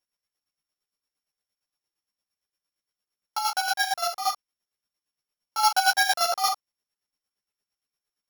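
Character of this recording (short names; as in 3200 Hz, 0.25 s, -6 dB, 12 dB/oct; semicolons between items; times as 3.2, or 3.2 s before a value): a buzz of ramps at a fixed pitch in blocks of 8 samples; chopped level 8.7 Hz, depth 60%, duty 35%; a shimmering, thickened sound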